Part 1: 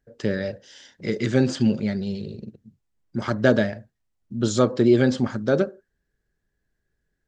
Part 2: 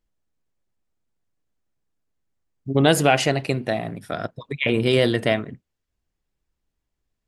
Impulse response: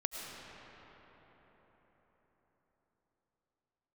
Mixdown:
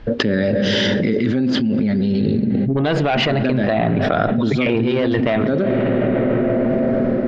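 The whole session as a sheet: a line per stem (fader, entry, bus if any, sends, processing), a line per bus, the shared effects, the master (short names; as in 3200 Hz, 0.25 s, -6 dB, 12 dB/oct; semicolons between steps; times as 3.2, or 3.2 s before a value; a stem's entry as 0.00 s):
-14.5 dB, 0.00 s, send -16 dB, bell 250 Hz +9.5 dB 0.51 oct; AGC gain up to 11.5 dB
-1.5 dB, 0.00 s, send -21 dB, one diode to ground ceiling -13 dBFS; LPF 3200 Hz 6 dB/oct; hard clip -13.5 dBFS, distortion -23 dB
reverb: on, RT60 4.9 s, pre-delay 65 ms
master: LPF 4200 Hz 24 dB/oct; fast leveller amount 100%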